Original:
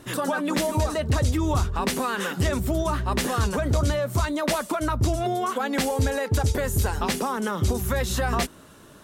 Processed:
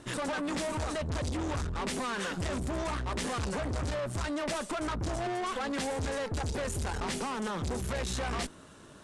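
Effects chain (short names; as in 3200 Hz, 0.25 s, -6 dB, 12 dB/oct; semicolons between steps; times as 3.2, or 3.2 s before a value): tube stage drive 32 dB, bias 0.75; steep low-pass 10000 Hz 36 dB/oct; gain +1 dB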